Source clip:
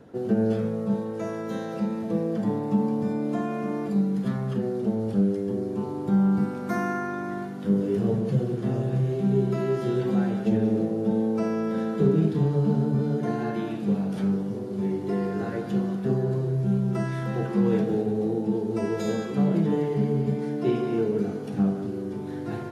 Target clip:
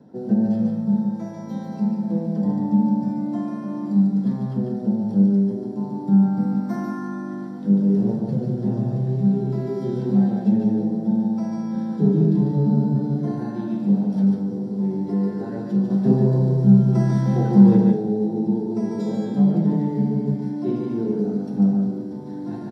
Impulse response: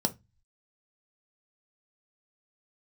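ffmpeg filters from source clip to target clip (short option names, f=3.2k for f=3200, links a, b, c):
-filter_complex "[0:a]asettb=1/sr,asplit=3[a][b][c];[a]atrim=end=15.904[d];[b]atrim=start=15.9:end=17.77,asetpts=PTS-STARTPTS,afade=t=in:d=0.004:c=qsin,afade=t=out:st=1.866:d=0.004:c=qsin,acontrast=65[e];[c]atrim=start=17.766[f];[d][e]acrossfade=d=0.004:c1=hsin:c2=qsin[g];[g][f]acrossfade=d=0.004:c1=qsin:c2=hsin,aecho=1:1:146:0.668[h];[1:a]atrim=start_sample=2205[i];[h][i]afir=irnorm=-1:irlink=0,volume=-12.5dB"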